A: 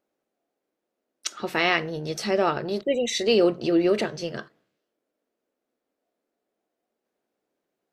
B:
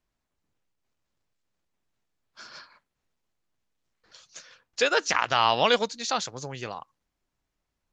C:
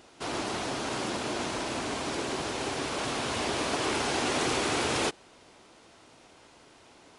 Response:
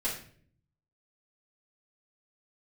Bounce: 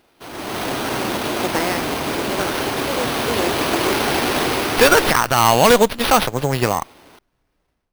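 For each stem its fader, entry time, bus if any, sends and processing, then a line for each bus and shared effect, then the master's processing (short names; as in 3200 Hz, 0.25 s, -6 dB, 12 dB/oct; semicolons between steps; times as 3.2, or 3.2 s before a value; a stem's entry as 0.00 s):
-9.5 dB, 0.00 s, bus A, no send, de-esser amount 85%; auto duck -12 dB, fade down 1.10 s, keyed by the second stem
+1.5 dB, 0.00 s, bus A, no send, LPF 5400 Hz; running maximum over 5 samples
-4.0 dB, 0.00 s, no bus, no send, dry
bus A: 0.0 dB, sample leveller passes 1; limiter -14.5 dBFS, peak gain reduction 9 dB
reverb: off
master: AGC gain up to 14 dB; sample-rate reducer 7200 Hz, jitter 0%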